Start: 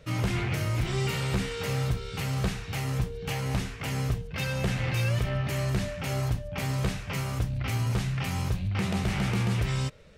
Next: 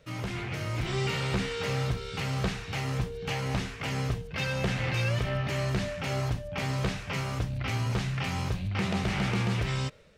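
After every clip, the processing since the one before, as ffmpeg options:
ffmpeg -i in.wav -filter_complex "[0:a]dynaudnorm=framelen=470:gausssize=3:maxgain=6dB,lowshelf=frequency=150:gain=-6,acrossover=split=6800[link_01][link_02];[link_02]acompressor=threshold=-53dB:ratio=4:attack=1:release=60[link_03];[link_01][link_03]amix=inputs=2:normalize=0,volume=-4.5dB" out.wav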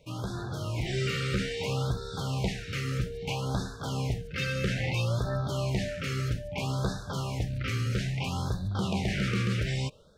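ffmpeg -i in.wav -af "afftfilt=real='re*(1-between(b*sr/1024,780*pow(2500/780,0.5+0.5*sin(2*PI*0.61*pts/sr))/1.41,780*pow(2500/780,0.5+0.5*sin(2*PI*0.61*pts/sr))*1.41))':imag='im*(1-between(b*sr/1024,780*pow(2500/780,0.5+0.5*sin(2*PI*0.61*pts/sr))/1.41,780*pow(2500/780,0.5+0.5*sin(2*PI*0.61*pts/sr))*1.41))':win_size=1024:overlap=0.75" out.wav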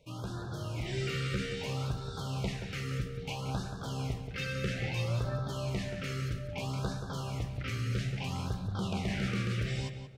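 ffmpeg -i in.wav -filter_complex "[0:a]asplit=2[link_01][link_02];[link_02]adelay=179,lowpass=frequency=2800:poles=1,volume=-7.5dB,asplit=2[link_03][link_04];[link_04]adelay=179,lowpass=frequency=2800:poles=1,volume=0.31,asplit=2[link_05][link_06];[link_06]adelay=179,lowpass=frequency=2800:poles=1,volume=0.31,asplit=2[link_07][link_08];[link_08]adelay=179,lowpass=frequency=2800:poles=1,volume=0.31[link_09];[link_01][link_03][link_05][link_07][link_09]amix=inputs=5:normalize=0,volume=-5dB" out.wav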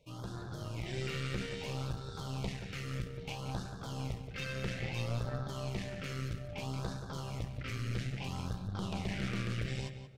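ffmpeg -i in.wav -af "aeval=exprs='(tanh(22.4*val(0)+0.7)-tanh(0.7))/22.4':channel_layout=same" out.wav

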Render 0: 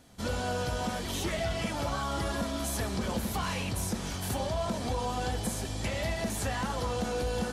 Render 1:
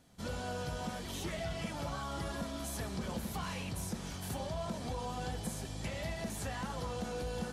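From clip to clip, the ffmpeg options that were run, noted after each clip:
ffmpeg -i in.wav -af "equalizer=frequency=160:width=6.1:gain=8,volume=-7.5dB" out.wav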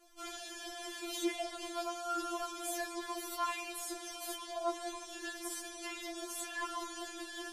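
ffmpeg -i in.wav -af "areverse,acompressor=mode=upward:threshold=-56dB:ratio=2.5,areverse,afftfilt=real='re*4*eq(mod(b,16),0)':imag='im*4*eq(mod(b,16),0)':win_size=2048:overlap=0.75,volume=5dB" out.wav

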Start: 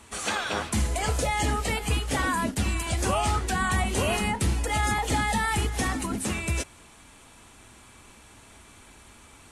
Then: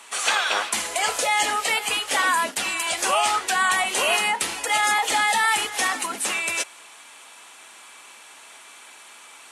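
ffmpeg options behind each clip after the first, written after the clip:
ffmpeg -i in.wav -af "highpass=680,equalizer=frequency=2900:width=1.5:gain=2.5,volume=7dB" out.wav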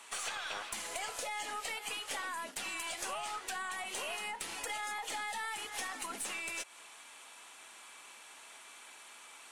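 ffmpeg -i in.wav -af "acompressor=threshold=-28dB:ratio=12,aeval=exprs='(tanh(10*val(0)+0.4)-tanh(0.4))/10':channel_layout=same,volume=-6.5dB" out.wav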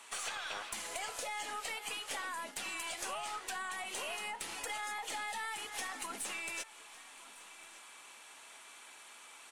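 ffmpeg -i in.wav -af "aecho=1:1:1155:0.106,volume=-1dB" out.wav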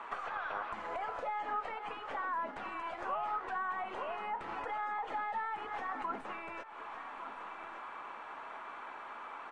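ffmpeg -i in.wav -af "acompressor=threshold=-46dB:ratio=6,lowpass=frequency=1200:width_type=q:width=1.6,volume=11dB" out.wav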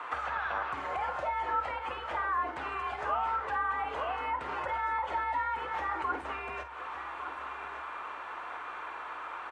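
ffmpeg -i in.wav -filter_complex "[0:a]afreqshift=66,asplit=2[link_01][link_02];[link_02]adelay=50,volume=-11dB[link_03];[link_01][link_03]amix=inputs=2:normalize=0,volume=5dB" out.wav

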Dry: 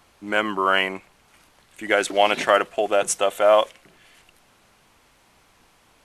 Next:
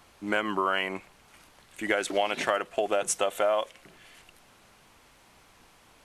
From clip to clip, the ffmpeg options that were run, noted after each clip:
ffmpeg -i in.wav -af "acompressor=threshold=-23dB:ratio=5" out.wav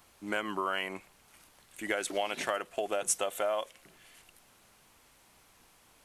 ffmpeg -i in.wav -af "highshelf=frequency=7800:gain=11,volume=-6dB" out.wav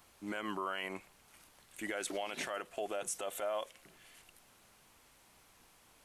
ffmpeg -i in.wav -af "alimiter=level_in=1.5dB:limit=-24dB:level=0:latency=1:release=33,volume=-1.5dB,volume=-2dB" out.wav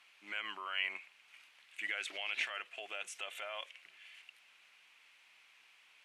ffmpeg -i in.wav -af "bandpass=frequency=2500:width_type=q:width=2.7:csg=0,volume=9dB" out.wav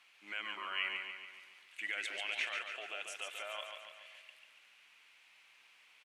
ffmpeg -i in.wav -af "aecho=1:1:142|284|426|568|710|852|994:0.531|0.287|0.155|0.0836|0.0451|0.0244|0.0132,volume=-1dB" out.wav

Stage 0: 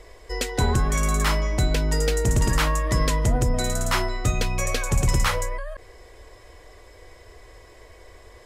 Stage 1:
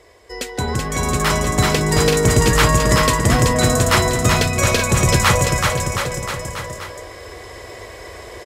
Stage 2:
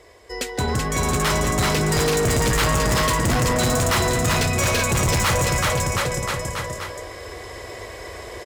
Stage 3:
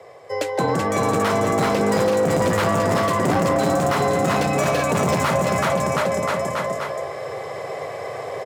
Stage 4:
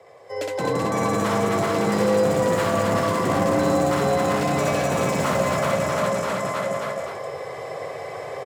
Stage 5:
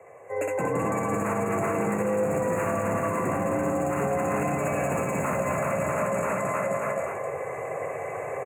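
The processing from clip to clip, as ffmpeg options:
ffmpeg -i in.wav -filter_complex "[0:a]highpass=86,asplit=2[link_01][link_02];[link_02]aecho=0:1:380|722|1030|1307|1556:0.631|0.398|0.251|0.158|0.1[link_03];[link_01][link_03]amix=inputs=2:normalize=0,dynaudnorm=framelen=270:gausssize=9:maxgain=12.5dB" out.wav
ffmpeg -i in.wav -af "volume=17dB,asoftclip=hard,volume=-17dB" out.wav
ffmpeg -i in.wav -filter_complex "[0:a]equalizer=frequency=580:width=0.39:gain=14,afreqshift=50,acrossover=split=290[link_01][link_02];[link_02]acompressor=threshold=-12dB:ratio=6[link_03];[link_01][link_03]amix=inputs=2:normalize=0,volume=-5.5dB" out.wav
ffmpeg -i in.wav -af "aecho=1:1:64.14|174.9|262.4:0.794|0.501|0.708,volume=-6dB" out.wav
ffmpeg -i in.wav -af "afftfilt=real='re*(1-between(b*sr/4096,2800,6300))':imag='im*(1-between(b*sr/4096,2800,6300))':win_size=4096:overlap=0.75,alimiter=limit=-17.5dB:level=0:latency=1:release=146" out.wav

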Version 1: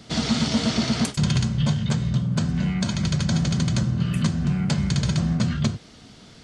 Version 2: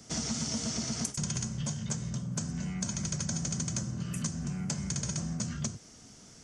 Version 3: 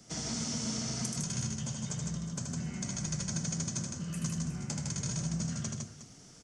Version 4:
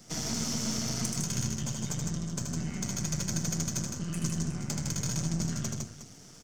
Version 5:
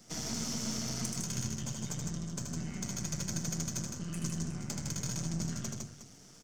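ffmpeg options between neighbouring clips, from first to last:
ffmpeg -i in.wav -filter_complex "[0:a]acrossover=split=180|3300[link_01][link_02][link_03];[link_01]acompressor=threshold=-30dB:ratio=4[link_04];[link_02]acompressor=threshold=-29dB:ratio=4[link_05];[link_03]acompressor=threshold=-33dB:ratio=4[link_06];[link_04][link_05][link_06]amix=inputs=3:normalize=0,highshelf=frequency=4900:width_type=q:width=3:gain=7,volume=-8dB" out.wav
ffmpeg -i in.wav -filter_complex "[0:a]flanger=delay=5.5:depth=3.1:regen=-56:speed=0.95:shape=triangular,asplit=2[link_01][link_02];[link_02]aecho=0:1:78|157|362:0.596|0.668|0.211[link_03];[link_01][link_03]amix=inputs=2:normalize=0" out.wav
ffmpeg -i in.wav -af "aeval=exprs='if(lt(val(0),0),0.447*val(0),val(0))':channel_layout=same,volume=5.5dB" out.wav
ffmpeg -i in.wav -af "bandreject=frequency=50:width_type=h:width=6,bandreject=frequency=100:width_type=h:width=6,bandreject=frequency=150:width_type=h:width=6,volume=-4dB" out.wav

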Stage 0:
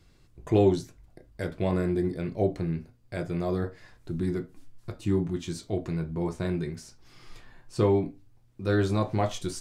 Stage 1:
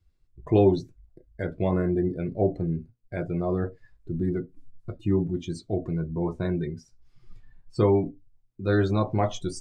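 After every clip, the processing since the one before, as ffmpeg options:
ffmpeg -i in.wav -af "afftdn=noise_reduction=21:noise_floor=-41,volume=2dB" out.wav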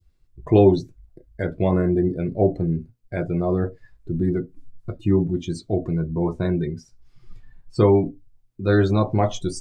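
ffmpeg -i in.wav -af "adynamicequalizer=threshold=0.00794:dfrequency=1600:dqfactor=0.77:tfrequency=1600:tqfactor=0.77:attack=5:release=100:ratio=0.375:range=2:mode=cutabove:tftype=bell,volume=5dB" out.wav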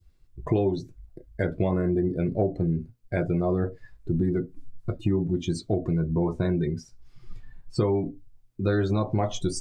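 ffmpeg -i in.wav -af "acompressor=threshold=-23dB:ratio=6,volume=2dB" out.wav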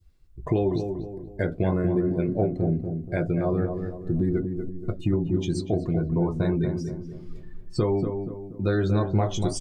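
ffmpeg -i in.wav -filter_complex "[0:a]asplit=2[link_01][link_02];[link_02]adelay=239,lowpass=frequency=1200:poles=1,volume=-6dB,asplit=2[link_03][link_04];[link_04]adelay=239,lowpass=frequency=1200:poles=1,volume=0.44,asplit=2[link_05][link_06];[link_06]adelay=239,lowpass=frequency=1200:poles=1,volume=0.44,asplit=2[link_07][link_08];[link_08]adelay=239,lowpass=frequency=1200:poles=1,volume=0.44,asplit=2[link_09][link_10];[link_10]adelay=239,lowpass=frequency=1200:poles=1,volume=0.44[link_11];[link_01][link_03][link_05][link_07][link_09][link_11]amix=inputs=6:normalize=0" out.wav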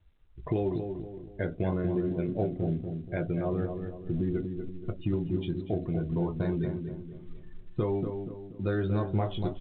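ffmpeg -i in.wav -af "volume=-5.5dB" -ar 8000 -c:a pcm_mulaw out.wav

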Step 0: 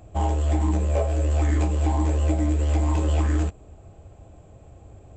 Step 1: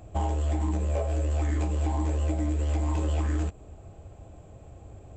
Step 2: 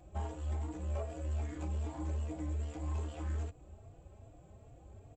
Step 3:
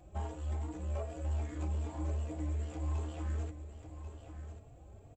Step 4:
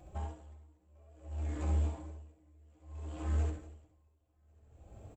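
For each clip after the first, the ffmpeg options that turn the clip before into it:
ffmpeg -i in.wav -af "acompressor=threshold=-25dB:ratio=3" out.wav
ffmpeg -i in.wav -filter_complex "[0:a]asoftclip=type=tanh:threshold=-24dB,asplit=2[link_01][link_02];[link_02]adelay=3.6,afreqshift=2.5[link_03];[link_01][link_03]amix=inputs=2:normalize=1,volume=-5.5dB" out.wav
ffmpeg -i in.wav -af "aecho=1:1:1091:0.316" out.wav
ffmpeg -i in.wav -af "aecho=1:1:67.06|239.1:0.708|0.398,aeval=exprs='val(0)*pow(10,-32*(0.5-0.5*cos(2*PI*0.59*n/s))/20)':channel_layout=same,volume=1.5dB" out.wav

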